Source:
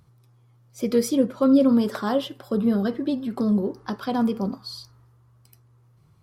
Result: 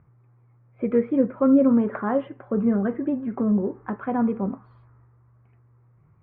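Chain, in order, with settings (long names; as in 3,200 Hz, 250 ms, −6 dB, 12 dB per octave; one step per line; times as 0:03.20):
Butterworth low-pass 2,300 Hz 48 dB per octave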